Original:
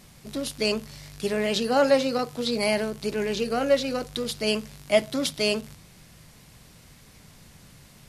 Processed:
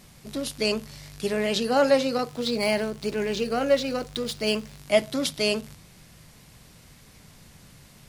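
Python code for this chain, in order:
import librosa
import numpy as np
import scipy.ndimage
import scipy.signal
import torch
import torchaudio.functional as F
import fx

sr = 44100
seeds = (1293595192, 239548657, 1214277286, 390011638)

y = fx.median_filter(x, sr, points=3, at=(2.28, 4.78))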